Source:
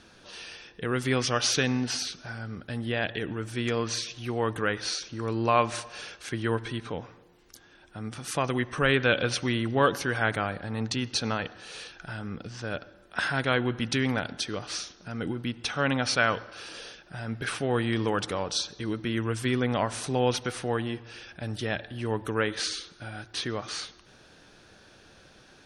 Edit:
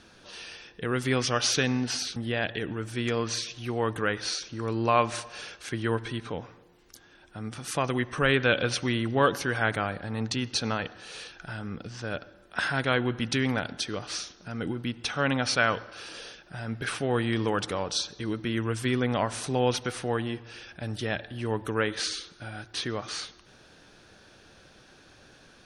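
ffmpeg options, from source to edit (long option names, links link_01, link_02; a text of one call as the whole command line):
ffmpeg -i in.wav -filter_complex "[0:a]asplit=2[link_01][link_02];[link_01]atrim=end=2.162[link_03];[link_02]atrim=start=2.758[link_04];[link_03][link_04]acrossfade=duration=0.004:curve1=hsin:curve2=hsin" out.wav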